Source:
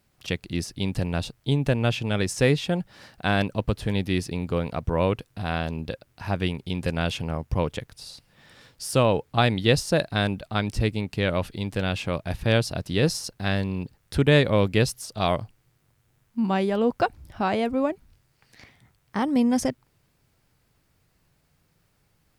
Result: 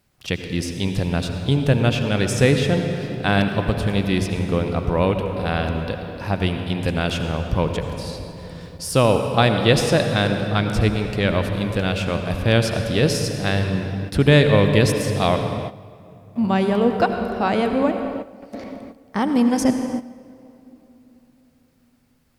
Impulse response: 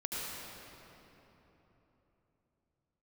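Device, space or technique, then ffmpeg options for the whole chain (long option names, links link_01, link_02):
keyed gated reverb: -filter_complex "[0:a]asplit=3[link_01][link_02][link_03];[1:a]atrim=start_sample=2205[link_04];[link_02][link_04]afir=irnorm=-1:irlink=0[link_05];[link_03]apad=whole_len=987337[link_06];[link_05][link_06]sidechaingate=range=-12dB:threshold=-59dB:ratio=16:detection=peak,volume=-5.5dB[link_07];[link_01][link_07]amix=inputs=2:normalize=0,volume=1dB"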